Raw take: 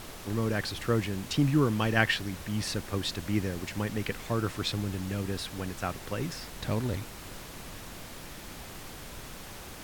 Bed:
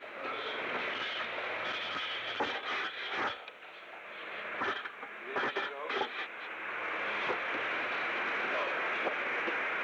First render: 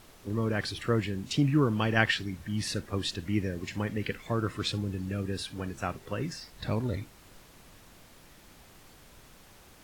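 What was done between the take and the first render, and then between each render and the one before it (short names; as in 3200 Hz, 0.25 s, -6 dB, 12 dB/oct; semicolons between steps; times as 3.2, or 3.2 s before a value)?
noise print and reduce 11 dB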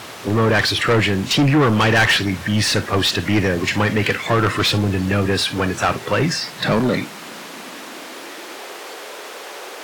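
high-pass sweep 98 Hz -> 420 Hz, 5.87–8.81; overdrive pedal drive 31 dB, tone 3900 Hz, clips at -6 dBFS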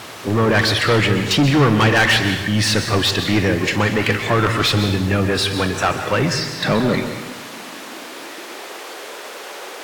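plate-style reverb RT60 0.98 s, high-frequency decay 0.95×, pre-delay 0.115 s, DRR 7.5 dB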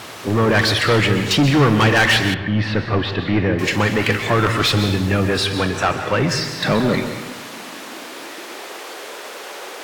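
2.34–3.59 air absorption 360 m; 5.37–6.28 LPF 9400 Hz -> 4000 Hz 6 dB/oct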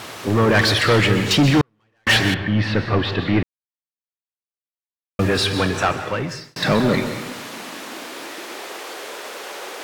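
1.61–2.07 gate -3 dBFS, range -50 dB; 3.43–5.19 mute; 5.79–6.56 fade out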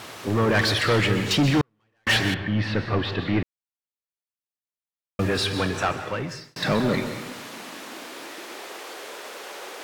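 gain -5 dB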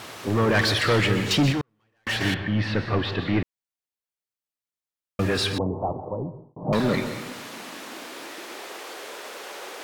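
1.52–2.21 compressor 1.5:1, threshold -35 dBFS; 5.58–6.73 steep low-pass 1000 Hz 72 dB/oct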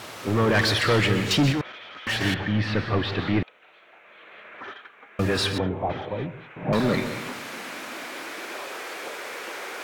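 add bed -5 dB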